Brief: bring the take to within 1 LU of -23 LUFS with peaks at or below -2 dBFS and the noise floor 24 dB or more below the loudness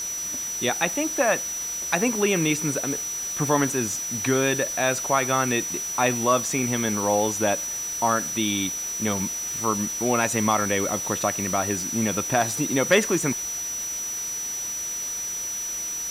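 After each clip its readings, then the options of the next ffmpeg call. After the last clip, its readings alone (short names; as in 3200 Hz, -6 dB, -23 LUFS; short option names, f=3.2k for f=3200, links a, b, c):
steady tone 5900 Hz; tone level -28 dBFS; noise floor -31 dBFS; noise floor target -48 dBFS; loudness -23.5 LUFS; peak -7.0 dBFS; loudness target -23.0 LUFS
-> -af "bandreject=f=5.9k:w=30"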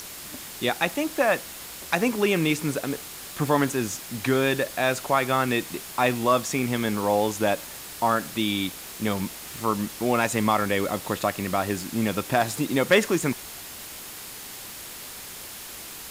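steady tone none; noise floor -40 dBFS; noise floor target -49 dBFS
-> -af "afftdn=nr=9:nf=-40"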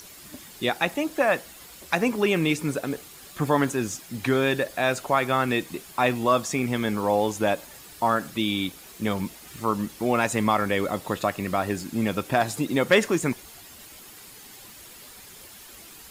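noise floor -46 dBFS; noise floor target -50 dBFS
-> -af "afftdn=nr=6:nf=-46"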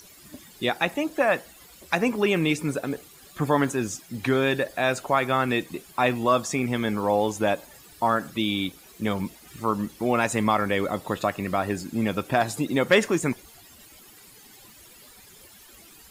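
noise floor -51 dBFS; loudness -25.5 LUFS; peak -7.5 dBFS; loudness target -23.0 LUFS
-> -af "volume=2.5dB"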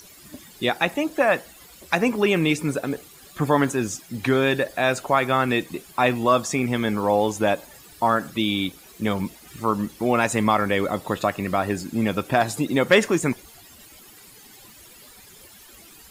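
loudness -23.0 LUFS; peak -5.0 dBFS; noise floor -48 dBFS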